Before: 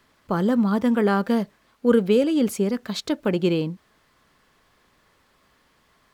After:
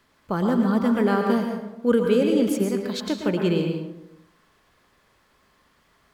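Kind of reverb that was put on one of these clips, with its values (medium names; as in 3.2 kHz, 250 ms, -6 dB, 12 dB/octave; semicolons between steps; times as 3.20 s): plate-style reverb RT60 0.86 s, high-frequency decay 0.55×, pre-delay 100 ms, DRR 2.5 dB; trim -2 dB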